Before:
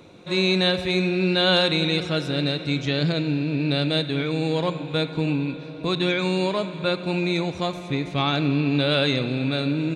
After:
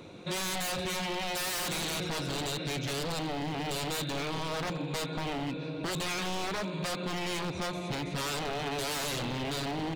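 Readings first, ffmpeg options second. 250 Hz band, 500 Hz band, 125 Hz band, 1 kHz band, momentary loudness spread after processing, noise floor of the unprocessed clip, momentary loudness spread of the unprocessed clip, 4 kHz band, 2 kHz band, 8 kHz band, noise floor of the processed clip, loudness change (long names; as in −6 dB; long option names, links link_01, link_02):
−13.0 dB, −11.5 dB, −12.5 dB, −4.5 dB, 3 LU, −37 dBFS, 7 LU, −10.0 dB, −8.5 dB, +9.0 dB, −38 dBFS, −10.0 dB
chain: -af "aeval=exprs='0.0631*(abs(mod(val(0)/0.0631+3,4)-2)-1)':channel_layout=same,acompressor=threshold=-31dB:ratio=6"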